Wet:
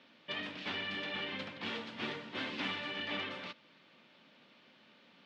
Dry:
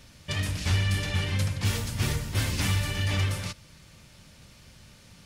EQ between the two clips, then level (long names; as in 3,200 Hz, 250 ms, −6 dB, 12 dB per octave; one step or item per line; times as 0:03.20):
Chebyshev band-pass filter 240–3,500 Hz, order 3
−4.5 dB